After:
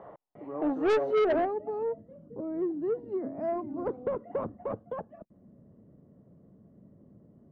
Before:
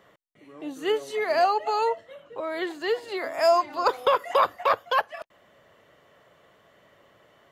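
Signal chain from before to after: low-pass sweep 820 Hz -> 220 Hz, 1.02–1.55; soft clip -29 dBFS, distortion -5 dB; gain +7.5 dB

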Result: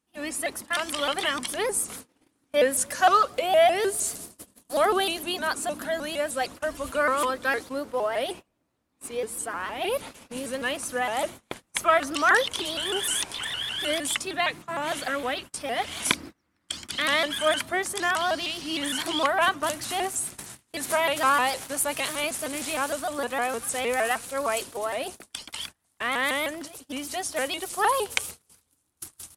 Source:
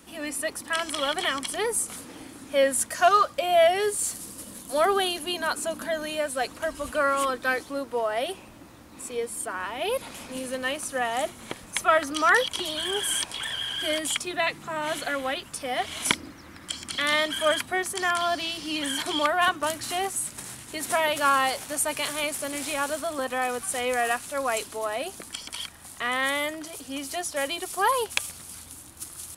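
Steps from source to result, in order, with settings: dark delay 92 ms, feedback 79%, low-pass 410 Hz, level -22 dB; gate -38 dBFS, range -28 dB; shaped vibrato saw up 6.5 Hz, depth 160 cents

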